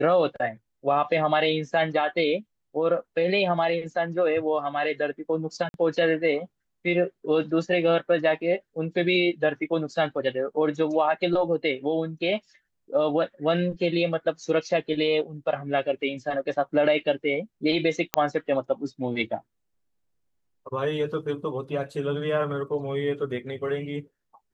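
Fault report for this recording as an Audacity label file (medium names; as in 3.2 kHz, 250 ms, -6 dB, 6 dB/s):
5.690000	5.740000	dropout 51 ms
18.140000	18.140000	pop -6 dBFS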